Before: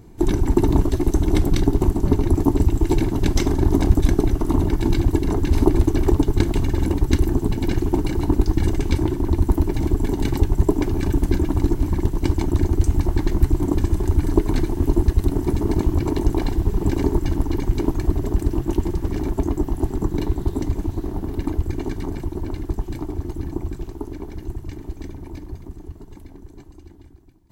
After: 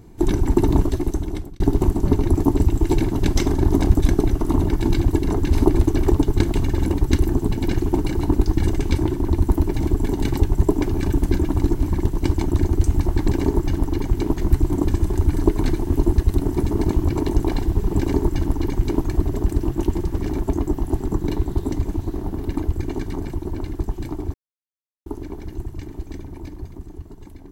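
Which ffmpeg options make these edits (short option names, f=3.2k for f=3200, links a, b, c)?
-filter_complex "[0:a]asplit=6[a][b][c][d][e][f];[a]atrim=end=1.6,asetpts=PTS-STARTPTS,afade=t=out:st=0.82:d=0.78[g];[b]atrim=start=1.6:end=13.282,asetpts=PTS-STARTPTS,afade=t=in:d=0.004:c=hsin[h];[c]atrim=start=16.858:end=17.962[i];[d]atrim=start=13.278:end=23.24,asetpts=PTS-STARTPTS,afade=t=out:st=9.958:d=0.004:c=hsin[j];[e]atrim=start=23.24:end=23.96,asetpts=PTS-STARTPTS,volume=0[k];[f]atrim=start=23.96,asetpts=PTS-STARTPTS,afade=t=in:d=0.004:c=hsin[l];[g][h]concat=n=2:v=0:a=1[m];[m][i]acrossfade=d=0.004:c1=hsin:c2=hsin[n];[j][k][l]concat=n=3:v=0:a=1[o];[n][o]acrossfade=d=0.004:c1=hsin:c2=hsin"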